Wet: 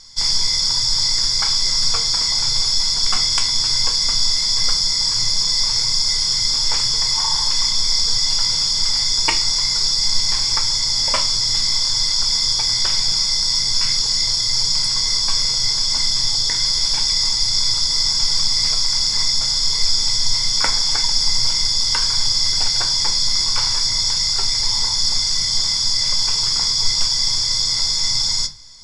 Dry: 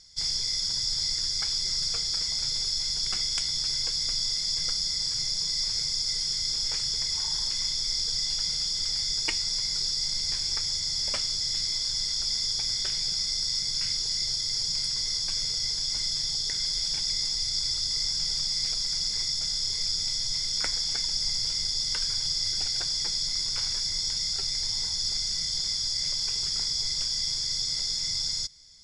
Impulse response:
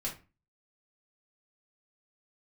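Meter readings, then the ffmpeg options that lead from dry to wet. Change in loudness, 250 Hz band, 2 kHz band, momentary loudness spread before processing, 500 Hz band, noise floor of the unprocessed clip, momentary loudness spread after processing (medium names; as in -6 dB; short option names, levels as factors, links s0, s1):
+10.0 dB, no reading, +12.0 dB, 1 LU, +12.0 dB, -30 dBFS, 1 LU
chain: -filter_complex "[0:a]acontrast=76,equalizer=f=1000:t=o:w=0.61:g=12.5,asplit=2[s0][s1];[1:a]atrim=start_sample=2205[s2];[s1][s2]afir=irnorm=-1:irlink=0,volume=0.75[s3];[s0][s3]amix=inputs=2:normalize=0,volume=0.891"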